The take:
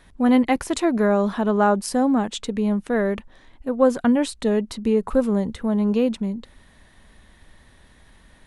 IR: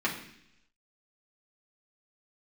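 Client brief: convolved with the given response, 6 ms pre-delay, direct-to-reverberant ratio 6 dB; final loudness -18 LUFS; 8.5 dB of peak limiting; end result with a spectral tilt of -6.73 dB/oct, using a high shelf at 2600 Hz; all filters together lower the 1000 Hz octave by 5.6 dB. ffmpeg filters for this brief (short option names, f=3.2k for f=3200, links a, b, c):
-filter_complex "[0:a]equalizer=f=1k:t=o:g=-6.5,highshelf=f=2.6k:g=-8.5,alimiter=limit=-15.5dB:level=0:latency=1,asplit=2[a][b];[1:a]atrim=start_sample=2205,adelay=6[c];[b][c]afir=irnorm=-1:irlink=0,volume=-15.5dB[d];[a][d]amix=inputs=2:normalize=0,volume=5.5dB"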